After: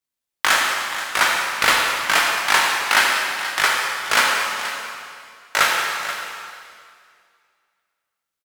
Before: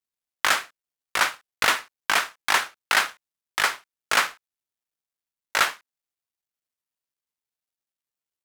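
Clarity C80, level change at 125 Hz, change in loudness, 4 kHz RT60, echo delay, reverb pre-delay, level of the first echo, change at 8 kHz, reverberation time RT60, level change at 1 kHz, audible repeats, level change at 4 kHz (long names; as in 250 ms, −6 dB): 1.0 dB, can't be measured, +5.5 dB, 2.1 s, 480 ms, 7 ms, −12.5 dB, +6.5 dB, 2.3 s, +6.5 dB, 1, +6.5 dB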